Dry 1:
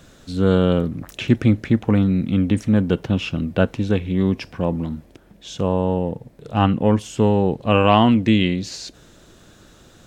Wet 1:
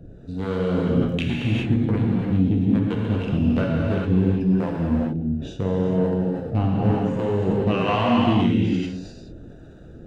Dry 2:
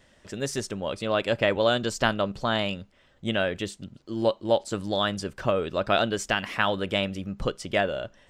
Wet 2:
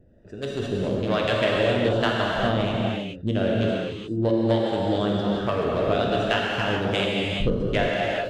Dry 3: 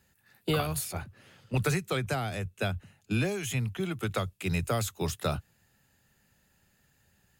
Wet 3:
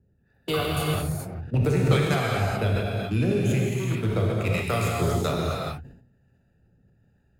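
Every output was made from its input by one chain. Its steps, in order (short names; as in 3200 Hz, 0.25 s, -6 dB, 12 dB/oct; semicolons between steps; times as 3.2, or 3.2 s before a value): Wiener smoothing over 41 samples; compressor, threshold -24 dBFS; soft clip -15.5 dBFS; harmonic tremolo 1.2 Hz, depth 70%, crossover 590 Hz; non-linear reverb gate 0.45 s flat, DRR -4 dB; sustainer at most 77 dB/s; gain +6.5 dB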